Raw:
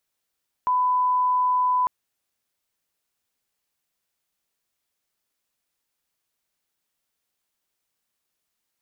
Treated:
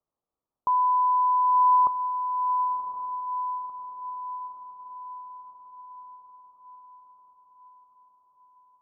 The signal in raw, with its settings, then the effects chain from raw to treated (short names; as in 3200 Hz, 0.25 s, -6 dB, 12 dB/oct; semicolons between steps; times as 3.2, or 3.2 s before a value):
line-up tone -18 dBFS 1.20 s
elliptic low-pass 1200 Hz, stop band 40 dB; on a send: diffused feedback echo 1.05 s, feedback 57%, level -6.5 dB